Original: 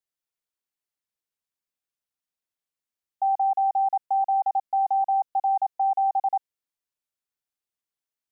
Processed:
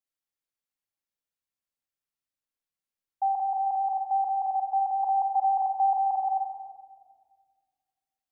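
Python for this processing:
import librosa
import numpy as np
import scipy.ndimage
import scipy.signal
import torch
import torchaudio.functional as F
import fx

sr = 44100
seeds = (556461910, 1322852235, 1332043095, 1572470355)

y = fx.peak_eq(x, sr, hz=960.0, db=8.0, octaves=0.38, at=(5.03, 6.16))
y = fx.room_shoebox(y, sr, seeds[0], volume_m3=2400.0, walls='mixed', distance_m=2.2)
y = y * librosa.db_to_amplitude(-6.0)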